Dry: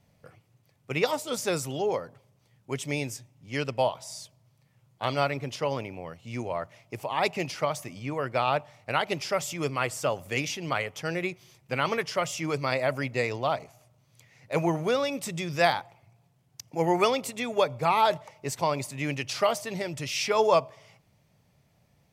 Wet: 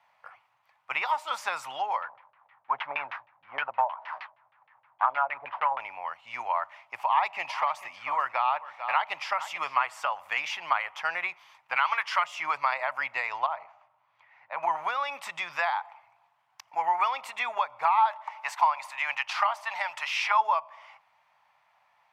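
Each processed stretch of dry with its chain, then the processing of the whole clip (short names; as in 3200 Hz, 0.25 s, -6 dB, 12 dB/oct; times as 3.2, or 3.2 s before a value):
2.02–5.8 CVSD 32 kbps + LFO low-pass saw down 6.4 Hz 460–2800 Hz
7.03–9.81 notch 1500 Hz, Q 15 + echo 0.443 s -16 dB
11.76–12.24 de-esser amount 70% + tilt shelf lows -8 dB, about 660 Hz + notch 1800 Hz, Q 26
13.46–14.63 tape spacing loss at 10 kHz 26 dB + compressor 3:1, threshold -31 dBFS
17.98–20.41 resonant low shelf 520 Hz -12 dB, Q 1.5 + mismatched tape noise reduction encoder only
whole clip: three-band isolator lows -21 dB, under 430 Hz, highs -19 dB, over 3100 Hz; compressor 10:1, threshold -31 dBFS; resonant low shelf 630 Hz -13.5 dB, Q 3; gain +6.5 dB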